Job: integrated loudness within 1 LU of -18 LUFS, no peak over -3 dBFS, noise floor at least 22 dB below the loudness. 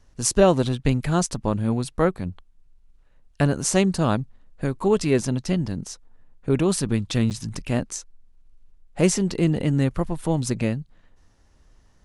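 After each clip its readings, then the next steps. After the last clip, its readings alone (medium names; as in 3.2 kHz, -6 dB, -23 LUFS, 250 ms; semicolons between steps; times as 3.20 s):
dropouts 1; longest dropout 8.8 ms; loudness -23.5 LUFS; peak level -3.5 dBFS; loudness target -18.0 LUFS
-> interpolate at 7.30 s, 8.8 ms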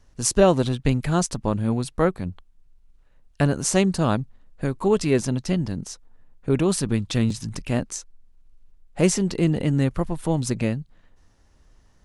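dropouts 0; loudness -23.5 LUFS; peak level -3.5 dBFS; loudness target -18.0 LUFS
-> trim +5.5 dB; peak limiter -3 dBFS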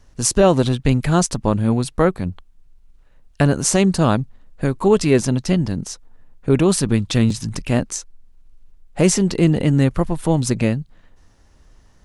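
loudness -18.5 LUFS; peak level -3.0 dBFS; noise floor -51 dBFS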